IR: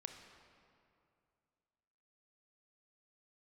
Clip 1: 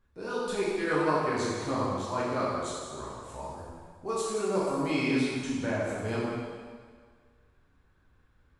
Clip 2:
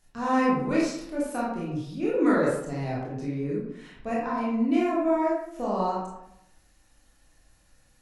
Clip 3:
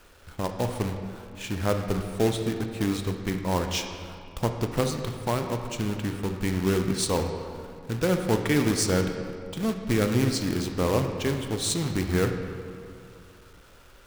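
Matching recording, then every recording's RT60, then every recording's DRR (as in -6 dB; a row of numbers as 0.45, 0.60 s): 3; 1.8, 0.80, 2.5 s; -8.0, -6.5, 5.0 dB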